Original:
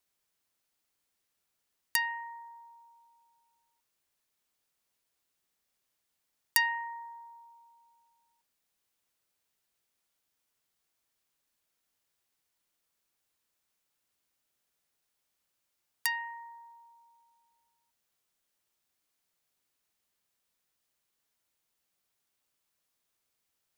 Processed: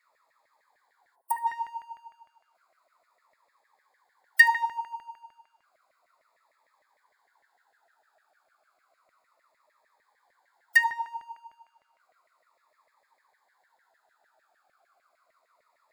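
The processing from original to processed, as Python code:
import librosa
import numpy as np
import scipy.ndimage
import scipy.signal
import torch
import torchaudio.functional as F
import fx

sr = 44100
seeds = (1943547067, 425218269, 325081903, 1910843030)

p1 = fx.wiener(x, sr, points=15)
p2 = fx.stretch_vocoder(p1, sr, factor=0.67)
p3 = fx.power_curve(p2, sr, exponent=0.7)
p4 = fx.filter_lfo_highpass(p3, sr, shape='saw_down', hz=6.6, low_hz=590.0, high_hz=2000.0, q=7.8)
p5 = fx.spec_box(p4, sr, start_s=1.15, length_s=0.32, low_hz=1100.0, high_hz=8200.0, gain_db=-24)
p6 = p5 + fx.echo_single(p5, sr, ms=76, db=-21.0, dry=0)
p7 = fx.notch_cascade(p6, sr, direction='falling', hz=0.32)
y = p7 * 10.0 ** (-3.5 / 20.0)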